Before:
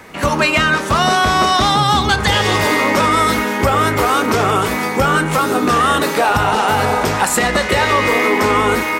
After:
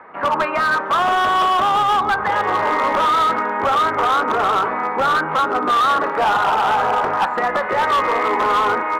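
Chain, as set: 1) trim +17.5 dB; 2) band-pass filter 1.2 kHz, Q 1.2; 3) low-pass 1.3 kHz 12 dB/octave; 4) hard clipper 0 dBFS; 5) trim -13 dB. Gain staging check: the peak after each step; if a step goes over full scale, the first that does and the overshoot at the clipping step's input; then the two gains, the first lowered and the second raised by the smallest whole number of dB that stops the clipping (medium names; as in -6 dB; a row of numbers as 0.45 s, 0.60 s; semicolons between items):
+13.5 dBFS, +12.0 dBFS, +9.5 dBFS, 0.0 dBFS, -13.0 dBFS; step 1, 9.5 dB; step 1 +7.5 dB, step 5 -3 dB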